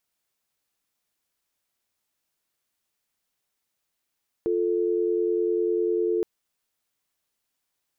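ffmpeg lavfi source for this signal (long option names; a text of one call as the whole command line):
ffmpeg -f lavfi -i "aevalsrc='0.0631*(sin(2*PI*350*t)+sin(2*PI*440*t))':duration=1.77:sample_rate=44100" out.wav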